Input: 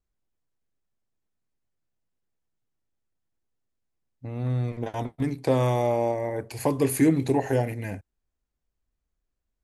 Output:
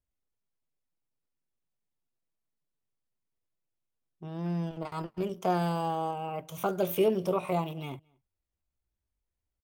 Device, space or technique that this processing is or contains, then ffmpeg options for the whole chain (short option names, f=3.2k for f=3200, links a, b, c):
chipmunk voice: -filter_complex "[0:a]asettb=1/sr,asplit=3[a][b][c];[a]atrim=end=5.594[d];[b]atrim=start=5.59:end=6.29,asetpts=PTS-STARTPTS,afade=t=in:d=0.004:c=qsin,afade=t=out:st=0.696:d=0.004:c=qsin,equalizer=f=940:t=o:w=0.95:g=-6[e];[c]atrim=start=6.286[f];[d][e]acrossfade=d=0.004:c1=hsin:c2=qsin[g];[g][f]acrossfade=d=0.004:c1=qsin:c2=hsin,asetrate=60591,aresample=44100,atempo=0.727827,asplit=2[h][i];[i]adelay=221.6,volume=-30dB,highshelf=f=4k:g=-4.99[j];[h][j]amix=inputs=2:normalize=0,volume=-5.5dB"